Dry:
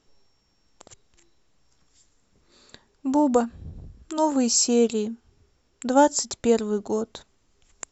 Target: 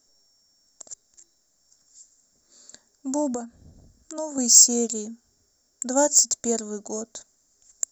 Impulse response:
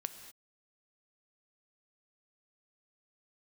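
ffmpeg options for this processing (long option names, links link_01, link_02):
-filter_complex "[0:a]equalizer=frequency=250:width_type=o:width=0.67:gain=8,equalizer=frequency=630:width_type=o:width=0.67:gain=11,equalizer=frequency=1600:width_type=o:width=0.67:gain=9,equalizer=frequency=4000:width_type=o:width=0.67:gain=-7,asettb=1/sr,asplit=3[link_01][link_02][link_03];[link_01]atrim=end=3.344[link_04];[link_02]atrim=start=3.34:end=4.38,asetpts=PTS-STARTPTS,afade=type=in:duration=0.004:curve=qsin,afade=type=out:start_time=1.036:duration=0.004:curve=qsin,acrossover=split=1300|3100[link_05][link_06][link_07];[link_05]acompressor=threshold=-17dB:ratio=4[link_08];[link_06]acompressor=threshold=-41dB:ratio=4[link_09];[link_07]acompressor=threshold=-53dB:ratio=4[link_10];[link_08][link_09][link_10]amix=inputs=3:normalize=0[link_11];[link_03]atrim=start=4.376[link_12];[link_04][link_11]acrossfade=duration=0.004:curve1=hsin:curve2=qsin[link_13];[link_13][link_12]acrossfade=duration=0.004:curve1=qsin:curve2=hsin,aexciter=amount=10.3:drive=8.1:freq=4300,volume=-12.5dB"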